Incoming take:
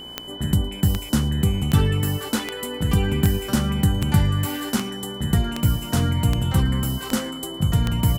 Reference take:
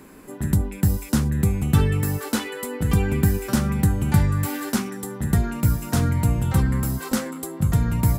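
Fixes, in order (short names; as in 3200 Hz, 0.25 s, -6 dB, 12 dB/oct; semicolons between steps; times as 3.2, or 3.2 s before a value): de-click; de-hum 60.6 Hz, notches 17; notch 3000 Hz, Q 30; inverse comb 0.112 s -22 dB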